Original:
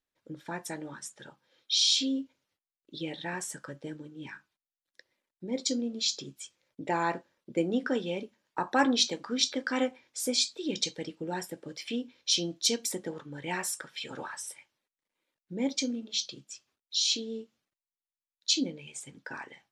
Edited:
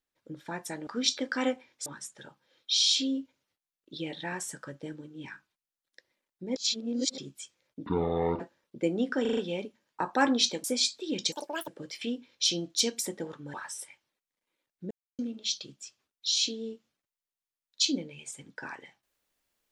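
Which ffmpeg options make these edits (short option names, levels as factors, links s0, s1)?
-filter_complex "[0:a]asplit=17[s0][s1][s2][s3][s4][s5][s6][s7][s8][s9][s10][s11][s12][s13][s14][s15][s16];[s0]atrim=end=0.872[s17];[s1]atrim=start=9.218:end=10.212[s18];[s2]atrim=start=0.868:end=5.572[s19];[s3]atrim=start=5.568:end=6.192,asetpts=PTS-STARTPTS,areverse[s20];[s4]atrim=start=6.188:end=6.874[s21];[s5]atrim=start=6.87:end=7.14,asetpts=PTS-STARTPTS,asetrate=22050,aresample=44100[s22];[s6]atrim=start=7.136:end=7.992[s23];[s7]atrim=start=7.948:end=7.992[s24];[s8]atrim=start=7.948:end=7.992[s25];[s9]atrim=start=7.948:end=7.992[s26];[s10]atrim=start=7.948:end=9.222[s27];[s11]atrim=start=10.208:end=10.894[s28];[s12]atrim=start=10.89:end=11.54,asetpts=PTS-STARTPTS,asetrate=80262,aresample=44100[s29];[s13]atrim=start=11.536:end=13.402[s30];[s14]atrim=start=14.218:end=15.59,asetpts=PTS-STARTPTS,afade=t=out:st=1.368:d=0.004:c=hsin[s31];[s15]atrim=start=15.59:end=15.87,asetpts=PTS-STARTPTS,volume=0[s32];[s16]atrim=start=15.87,asetpts=PTS-STARTPTS,afade=t=in:d=0.004:c=hsin[s33];[s17][s18]acrossfade=d=0.004:c1=hsin:c2=hsin[s34];[s34][s19]acrossfade=d=0.004:c1=hsin:c2=hsin[s35];[s35][s20]acrossfade=d=0.004:c1=hsin:c2=hsin[s36];[s36][s21]acrossfade=d=0.004:c1=hsin:c2=hsin[s37];[s37][s22]acrossfade=d=0.004:c1=hsin:c2=hsin[s38];[s38][s23]acrossfade=d=0.004:c1=hsin:c2=hsin[s39];[s39][s24]acrossfade=d=0.004:c1=hsin:c2=hsin[s40];[s40][s25]acrossfade=d=0.004:c1=hsin:c2=hsin[s41];[s41][s26]acrossfade=d=0.004:c1=hsin:c2=hsin[s42];[s42][s27]acrossfade=d=0.004:c1=hsin:c2=hsin[s43];[s43][s28]acrossfade=d=0.004:c1=hsin:c2=hsin[s44];[s44][s29]acrossfade=d=0.004:c1=hsin:c2=hsin[s45];[s45][s30]acrossfade=d=0.004:c1=hsin:c2=hsin[s46];[s31][s32][s33]concat=n=3:v=0:a=1[s47];[s46][s47]acrossfade=d=0.004:c1=hsin:c2=hsin"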